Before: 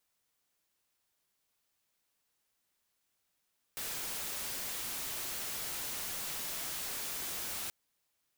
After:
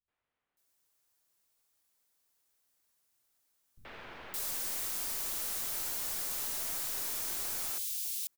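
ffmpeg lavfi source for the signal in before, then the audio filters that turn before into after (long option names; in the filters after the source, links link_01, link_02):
-f lavfi -i "anoisesrc=color=white:amplitude=0.0194:duration=3.93:sample_rate=44100:seed=1"
-filter_complex "[0:a]highshelf=frequency=6400:gain=5.5,acrossover=split=490|1500[link_01][link_02][link_03];[link_03]aeval=exprs='clip(val(0),-1,0.0178)':channel_layout=same[link_04];[link_01][link_02][link_04]amix=inputs=3:normalize=0,acrossover=split=170|2800[link_05][link_06][link_07];[link_06]adelay=80[link_08];[link_07]adelay=570[link_09];[link_05][link_08][link_09]amix=inputs=3:normalize=0"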